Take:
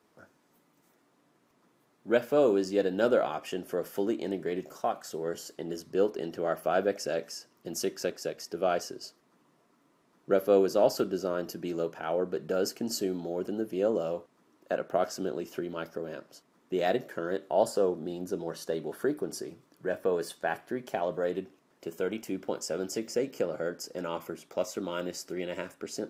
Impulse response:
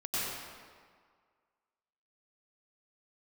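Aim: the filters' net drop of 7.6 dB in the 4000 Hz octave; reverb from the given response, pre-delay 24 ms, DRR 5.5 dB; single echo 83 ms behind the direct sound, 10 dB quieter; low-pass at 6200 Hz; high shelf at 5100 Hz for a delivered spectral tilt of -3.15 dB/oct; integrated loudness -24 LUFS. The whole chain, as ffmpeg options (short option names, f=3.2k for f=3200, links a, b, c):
-filter_complex "[0:a]lowpass=6.2k,equalizer=f=4k:t=o:g=-6.5,highshelf=f=5.1k:g=-5.5,aecho=1:1:83:0.316,asplit=2[a][b];[1:a]atrim=start_sample=2205,adelay=24[c];[b][c]afir=irnorm=-1:irlink=0,volume=-12dB[d];[a][d]amix=inputs=2:normalize=0,volume=6.5dB"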